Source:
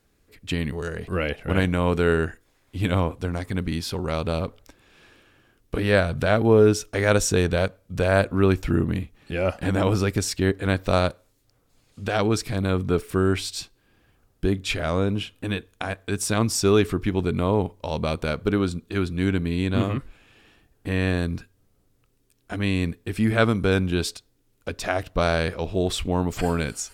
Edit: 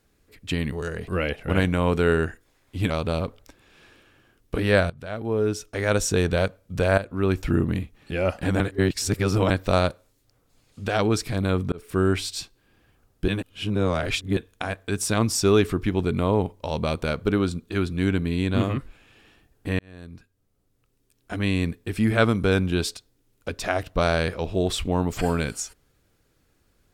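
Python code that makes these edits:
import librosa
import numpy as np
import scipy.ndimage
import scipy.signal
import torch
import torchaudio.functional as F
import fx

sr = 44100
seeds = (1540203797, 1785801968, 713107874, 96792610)

y = fx.edit(x, sr, fx.cut(start_s=2.9, length_s=1.2),
    fx.fade_in_from(start_s=6.1, length_s=1.47, floor_db=-20.0),
    fx.fade_in_from(start_s=8.18, length_s=0.5, floor_db=-13.5),
    fx.reverse_span(start_s=9.8, length_s=0.9),
    fx.fade_in_span(start_s=12.92, length_s=0.28),
    fx.reverse_span(start_s=14.48, length_s=1.09),
    fx.fade_in_span(start_s=20.99, length_s=1.58), tone=tone)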